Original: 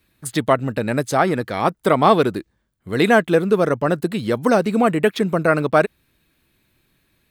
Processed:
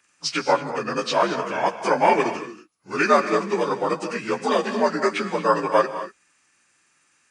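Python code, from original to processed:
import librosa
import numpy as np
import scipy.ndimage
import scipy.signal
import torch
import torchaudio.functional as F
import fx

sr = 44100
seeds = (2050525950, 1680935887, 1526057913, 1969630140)

y = fx.partial_stretch(x, sr, pct=84)
y = fx.highpass(y, sr, hz=1200.0, slope=6)
y = fx.rev_gated(y, sr, seeds[0], gate_ms=260, shape='rising', drr_db=10.0)
y = y * librosa.db_to_amplitude(6.0)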